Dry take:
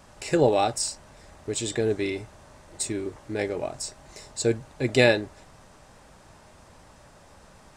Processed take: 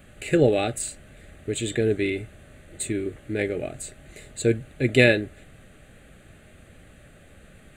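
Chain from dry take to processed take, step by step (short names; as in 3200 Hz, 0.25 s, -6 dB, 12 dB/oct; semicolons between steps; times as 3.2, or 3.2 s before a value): fixed phaser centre 2300 Hz, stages 4; gain +4.5 dB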